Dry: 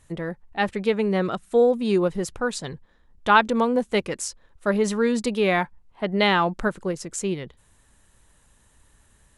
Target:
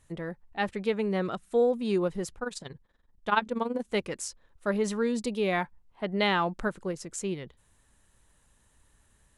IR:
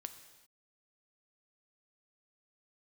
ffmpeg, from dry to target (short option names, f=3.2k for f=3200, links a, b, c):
-filter_complex "[0:a]asplit=3[a][b][c];[a]afade=t=out:st=2.34:d=0.02[d];[b]tremolo=f=21:d=0.788,afade=t=in:st=2.34:d=0.02,afade=t=out:st=3.86:d=0.02[e];[c]afade=t=in:st=3.86:d=0.02[f];[d][e][f]amix=inputs=3:normalize=0,asettb=1/sr,asplit=3[g][h][i];[g]atrim=end=5.034[j];[h]atrim=start=5.03:end=5.53,asetpts=PTS-STARTPTS,afade=t=in:d=0.004:c=qsin,afade=t=out:st=0.496:d=0.004:c=qsin,equalizer=f=1.5k:t=o:w=1.2:g=-6[k];[i]atrim=start=5.526[l];[j][k]acrossfade=d=0.004:c1=hsin:c2=qsin[m];[m][l]acrossfade=d=0.004:c1=qsin:c2=hsin,volume=-6dB"